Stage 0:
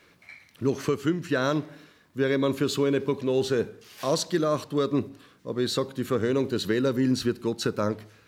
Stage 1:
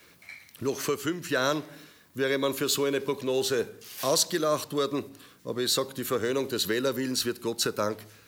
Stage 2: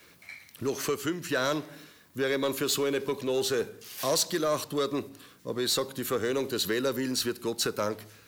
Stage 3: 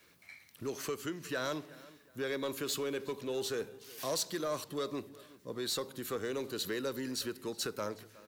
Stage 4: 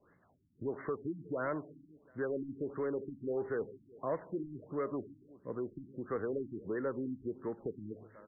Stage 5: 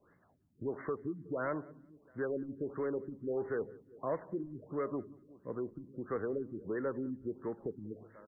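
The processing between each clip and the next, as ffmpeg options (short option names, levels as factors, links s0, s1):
-filter_complex "[0:a]aemphasis=mode=production:type=50kf,acrossover=split=370|1400|5500[s0][s1][s2][s3];[s0]acompressor=threshold=0.0178:ratio=6[s4];[s4][s1][s2][s3]amix=inputs=4:normalize=0"
-af "asoftclip=type=tanh:threshold=0.119"
-filter_complex "[0:a]asplit=2[s0][s1];[s1]adelay=366,lowpass=f=4600:p=1,volume=0.1,asplit=2[s2][s3];[s3]adelay=366,lowpass=f=4600:p=1,volume=0.36,asplit=2[s4][s5];[s5]adelay=366,lowpass=f=4600:p=1,volume=0.36[s6];[s0][s2][s4][s6]amix=inputs=4:normalize=0,volume=0.398"
-af "afftfilt=real='re*lt(b*sr/1024,330*pow(2200/330,0.5+0.5*sin(2*PI*1.5*pts/sr)))':imag='im*lt(b*sr/1024,330*pow(2200/330,0.5+0.5*sin(2*PI*1.5*pts/sr)))':win_size=1024:overlap=0.75,volume=1.12"
-af "aecho=1:1:186|372:0.0668|0.0127"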